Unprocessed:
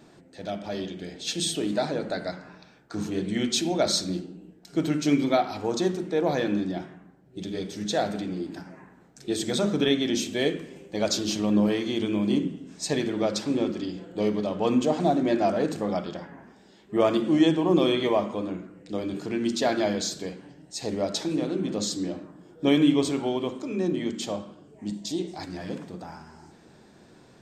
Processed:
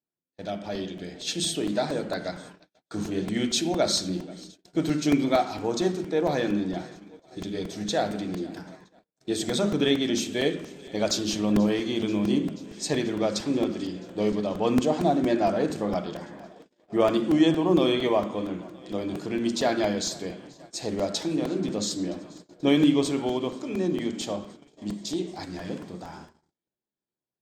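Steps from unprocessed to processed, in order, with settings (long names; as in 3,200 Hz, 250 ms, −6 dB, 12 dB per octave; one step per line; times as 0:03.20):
feedback echo with a high-pass in the loop 484 ms, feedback 81%, high-pass 180 Hz, level −22.5 dB
noise gate −44 dBFS, range −43 dB
regular buffer underruns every 0.23 s, samples 128, repeat, from 0:00.75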